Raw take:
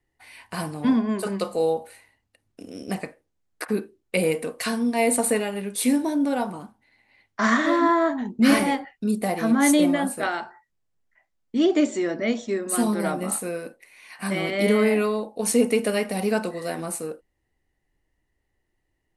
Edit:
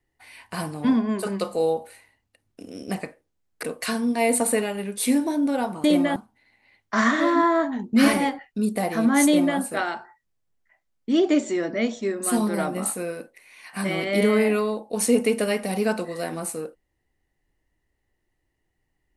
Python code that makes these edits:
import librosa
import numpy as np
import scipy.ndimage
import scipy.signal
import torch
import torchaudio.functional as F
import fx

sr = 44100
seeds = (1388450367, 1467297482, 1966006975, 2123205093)

y = fx.edit(x, sr, fx.cut(start_s=3.63, length_s=0.78),
    fx.duplicate(start_s=9.73, length_s=0.32, to_s=6.62), tone=tone)